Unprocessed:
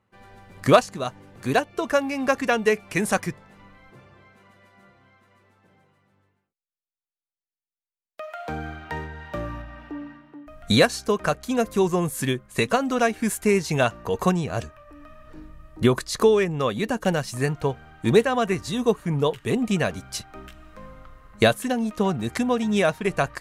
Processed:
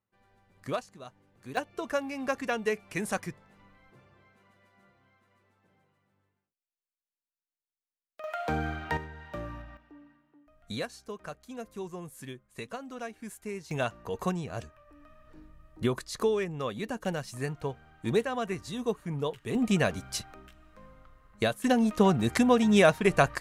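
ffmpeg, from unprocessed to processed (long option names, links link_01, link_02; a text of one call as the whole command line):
ffmpeg -i in.wav -af "asetnsamples=nb_out_samples=441:pad=0,asendcmd='1.57 volume volume -9dB;8.24 volume volume 1dB;8.97 volume volume -7.5dB;9.77 volume volume -18dB;13.71 volume volume -9.5dB;19.55 volume volume -2.5dB;20.34 volume volume -10dB;21.64 volume volume 0.5dB',volume=-17.5dB" out.wav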